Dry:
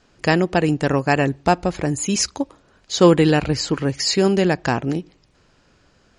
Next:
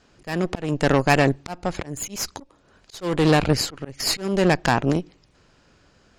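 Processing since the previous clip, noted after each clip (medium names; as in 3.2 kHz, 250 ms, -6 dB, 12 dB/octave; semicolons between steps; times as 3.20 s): Chebyshev shaper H 8 -18 dB, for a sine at -2.5 dBFS; slow attack 335 ms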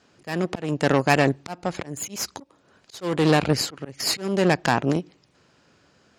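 high-pass 110 Hz 12 dB/octave; trim -1 dB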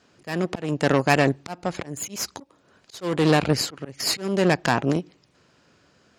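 band-stop 820 Hz, Q 24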